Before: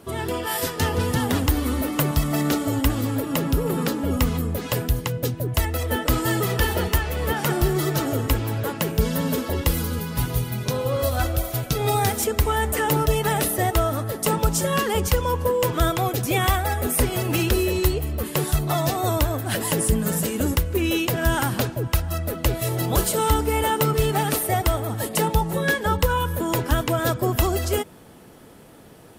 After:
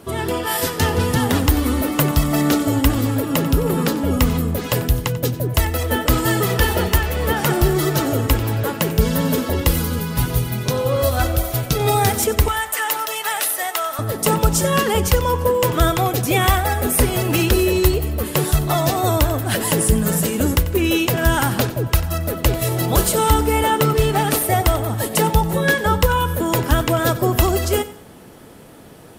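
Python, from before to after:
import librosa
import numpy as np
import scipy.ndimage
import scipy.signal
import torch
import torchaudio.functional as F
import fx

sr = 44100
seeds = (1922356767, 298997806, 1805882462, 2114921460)

y = fx.highpass(x, sr, hz=1000.0, slope=12, at=(12.48, 13.99))
y = fx.high_shelf(y, sr, hz=8000.0, db=-5.0, at=(23.63, 24.31))
y = fx.echo_feedback(y, sr, ms=92, feedback_pct=33, wet_db=-16)
y = F.gain(torch.from_numpy(y), 4.5).numpy()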